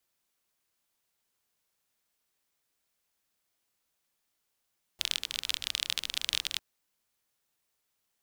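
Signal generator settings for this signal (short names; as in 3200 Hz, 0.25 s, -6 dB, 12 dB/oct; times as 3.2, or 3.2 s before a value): rain from filtered ticks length 1.60 s, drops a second 31, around 3400 Hz, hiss -22 dB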